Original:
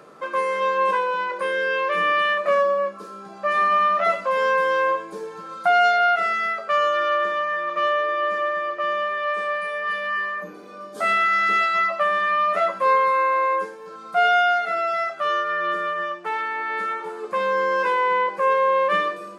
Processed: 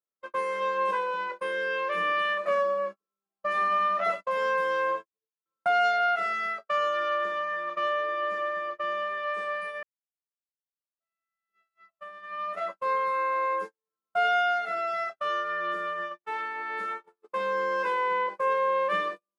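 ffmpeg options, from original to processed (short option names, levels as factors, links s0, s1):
-filter_complex "[0:a]asettb=1/sr,asplit=3[s0][s1][s2];[s0]atrim=end=4.104[s3];[s1]atrim=start=4.1:end=5.46,asetpts=PTS-STARTPTS,afade=t=in:d=0.004:c=qsin,afade=t=out:st=1.356:d=0.004:c=qsin,agate=range=0.0224:threshold=0.0562:ratio=3:release=100:detection=peak[s4];[s2]atrim=start=5.456[s5];[s3][s4]acrossfade=d=0.004:c1=hsin:c2=qsin[s6];[s6][s5]acrossfade=d=0.004:c1=qsin:c2=hsin,asplit=2[s7][s8];[s7]atrim=end=9.83,asetpts=PTS-STARTPTS,afade=t=out:st=9.826:d=0.004:c=hsin[s9];[s8]atrim=start=9.83,asetpts=PTS-STARTPTS,afade=t=in:d=3.63:c=qua[s10];[s9][s10]concat=n=2:v=0:a=1,agate=range=0.00355:threshold=0.0447:ratio=16:detection=peak,volume=0.473"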